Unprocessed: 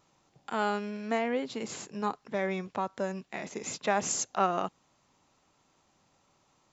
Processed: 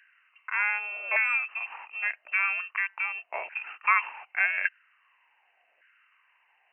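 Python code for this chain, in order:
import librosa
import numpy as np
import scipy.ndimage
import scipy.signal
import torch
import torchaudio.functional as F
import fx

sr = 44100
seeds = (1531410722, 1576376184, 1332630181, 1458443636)

y = fx.freq_invert(x, sr, carrier_hz=2900)
y = fx.filter_lfo_highpass(y, sr, shape='saw_down', hz=0.86, low_hz=580.0, high_hz=1600.0, q=6.6)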